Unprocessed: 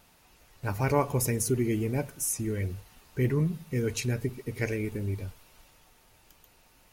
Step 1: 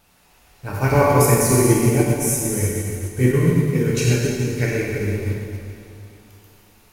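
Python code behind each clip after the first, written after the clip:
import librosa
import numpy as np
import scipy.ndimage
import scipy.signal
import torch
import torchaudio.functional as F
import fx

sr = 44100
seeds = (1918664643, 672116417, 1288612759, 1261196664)

y = fx.rev_plate(x, sr, seeds[0], rt60_s=3.0, hf_ratio=0.95, predelay_ms=0, drr_db=-6.0)
y = fx.upward_expand(y, sr, threshold_db=-32.0, expansion=1.5)
y = F.gain(torch.from_numpy(y), 7.0).numpy()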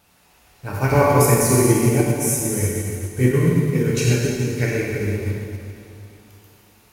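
y = scipy.signal.sosfilt(scipy.signal.butter(2, 47.0, 'highpass', fs=sr, output='sos'), x)
y = fx.end_taper(y, sr, db_per_s=200.0)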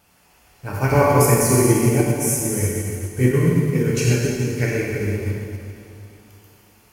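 y = fx.notch(x, sr, hz=3800.0, q=8.5)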